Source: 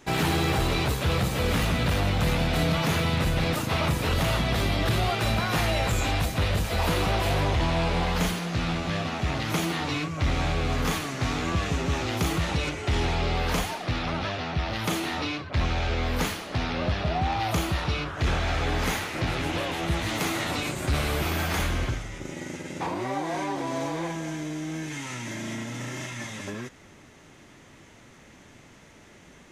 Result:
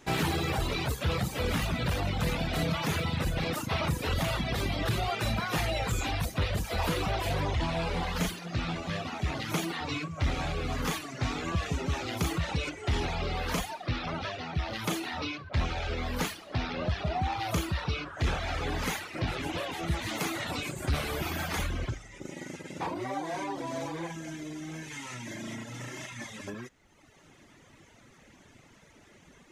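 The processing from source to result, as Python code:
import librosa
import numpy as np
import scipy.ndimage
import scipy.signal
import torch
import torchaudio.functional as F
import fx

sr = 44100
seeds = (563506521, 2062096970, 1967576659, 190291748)

y = fx.dereverb_blind(x, sr, rt60_s=1.2)
y = F.gain(torch.from_numpy(y), -2.5).numpy()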